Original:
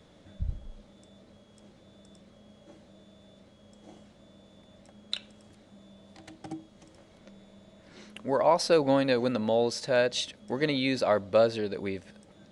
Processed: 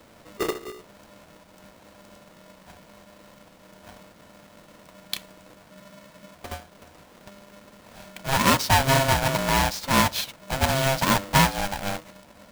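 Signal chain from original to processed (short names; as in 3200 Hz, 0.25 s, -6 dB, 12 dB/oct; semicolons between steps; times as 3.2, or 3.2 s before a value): half-waves squared off; spectral freeze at 5.74, 0.61 s; polarity switched at an audio rate 400 Hz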